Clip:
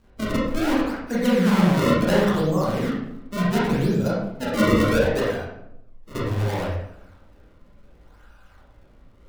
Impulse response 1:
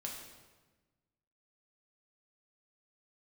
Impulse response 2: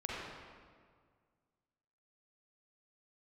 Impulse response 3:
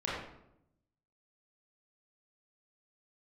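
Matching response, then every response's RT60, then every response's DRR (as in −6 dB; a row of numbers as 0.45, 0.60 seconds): 3; 1.3, 1.9, 0.80 seconds; −1.5, −5.5, −7.5 decibels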